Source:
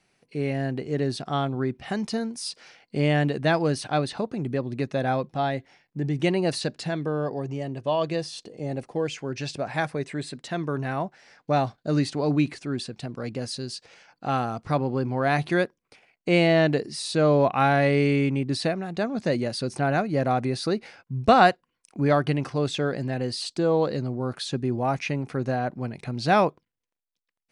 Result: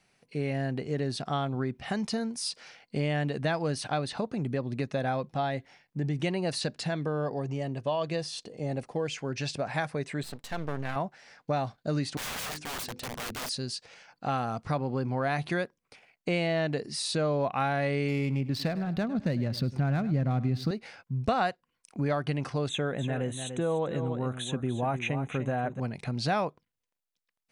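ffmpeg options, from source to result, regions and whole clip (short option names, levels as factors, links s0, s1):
-filter_complex "[0:a]asettb=1/sr,asplit=3[s0][s1][s2];[s0]atrim=end=10.234[s3];[s1]atrim=start=10.23:end=10.96,asetpts=PTS-STARTPTS,afade=t=in:d=0.004:c=qsin,afade=t=out:st=0.726:d=0.004:c=qsin,asuperstop=centerf=900:order=12:qfactor=7.6,aeval=exprs='max(val(0),0)':c=same[s4];[s2]atrim=start=10.956[s5];[s3][s4]acrossfade=d=0.004:c1=hsin:c2=qsin[s6];[s6][s5]acrossfade=d=0.004:c1=qsin:c2=hsin,asettb=1/sr,asplit=3[s7][s8][s9];[s7]atrim=end=12.174[s10];[s8]atrim=start=12.17:end=13.49,asetpts=PTS-STARTPTS,afade=t=in:d=0.004:c=qsin,afade=t=out:st=1.316:d=0.004:c=qsin,bandreject=f=50:t=h:w=6,bandreject=f=100:t=h:w=6,bandreject=f=150:t=h:w=6,bandreject=f=200:t=h:w=6,bandreject=f=250:t=h:w=6,bandreject=f=300:t=h:w=6,bandreject=f=350:t=h:w=6,bandreject=f=400:t=h:w=6,bandreject=f=450:t=h:w=6,bandreject=f=500:t=h:w=6,aeval=exprs='(mod(35.5*val(0)+1,2)-1)/35.5':c=same[s11];[s9]atrim=start=13.486[s12];[s10][s11]acrossfade=d=0.004:c1=hsin:c2=qsin[s13];[s13][s12]acrossfade=d=0.004:c1=qsin:c2=hsin,asettb=1/sr,asplit=3[s14][s15][s16];[s14]atrim=end=18.084[s17];[s15]atrim=start=18.08:end=20.71,asetpts=PTS-STARTPTS,afade=t=in:d=0.004:c=qsin,afade=t=out:st=2.626:d=0.004:c=qsin,asubboost=boost=7.5:cutoff=240,adynamicsmooth=sensitivity=5.5:basefreq=2600,aecho=1:1:102|204|306:0.126|0.0428|0.0146,atrim=end_sample=115983[s18];[s16]atrim=start=20.706[s19];[s17][s18]acrossfade=d=0.004:c1=hsin:c2=qsin[s20];[s20][s19]acrossfade=d=0.004:c1=qsin:c2=hsin,asettb=1/sr,asplit=3[s21][s22][s23];[s21]atrim=end=22.694[s24];[s22]atrim=start=22.69:end=25.8,asetpts=PTS-STARTPTS,afade=t=in:d=0.004:c=qsin,afade=t=out:st=3.106:d=0.004:c=qsin,asuperstop=centerf=4900:order=12:qfactor=2.2,aecho=1:1:294:0.299,atrim=end_sample=137151[s25];[s23]atrim=start=25.796[s26];[s24][s25]acrossfade=d=0.004:c1=hsin:c2=qsin[s27];[s27][s26]acrossfade=d=0.004:c1=qsin:c2=hsin,equalizer=f=340:t=o:w=0.57:g=-4.5,acompressor=threshold=0.0447:ratio=3"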